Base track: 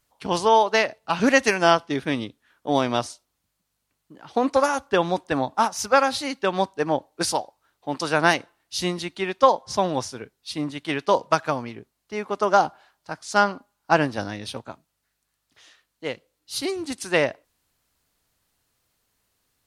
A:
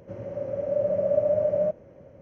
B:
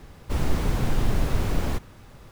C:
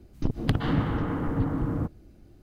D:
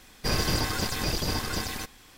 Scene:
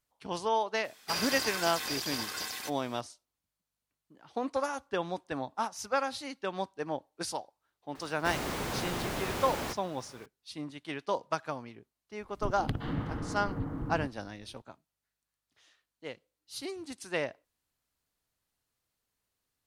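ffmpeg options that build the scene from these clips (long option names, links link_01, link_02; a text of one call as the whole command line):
ffmpeg -i bed.wav -i cue0.wav -i cue1.wav -i cue2.wav -i cue3.wav -filter_complex "[0:a]volume=-12dB[link_01];[4:a]highpass=frequency=1100:poles=1[link_02];[2:a]highpass=frequency=510:poles=1[link_03];[link_02]atrim=end=2.17,asetpts=PTS-STARTPTS,volume=-3dB,afade=type=in:duration=0.004:curve=hsin,afade=type=out:start_time=2.166:duration=0.004:curve=hsin,adelay=840[link_04];[link_03]atrim=end=2.31,asetpts=PTS-STARTPTS,volume=-0.5dB,afade=type=in:duration=0.004:curve=hsin,afade=type=out:start_time=2.306:duration=0.004:curve=hsin,adelay=7950[link_05];[3:a]atrim=end=2.42,asetpts=PTS-STARTPTS,volume=-9dB,afade=type=in:duration=0.004:curve=hsin,afade=type=out:start_time=2.416:duration=0.004:curve=hsin,adelay=538020S[link_06];[link_01][link_04][link_05][link_06]amix=inputs=4:normalize=0" out.wav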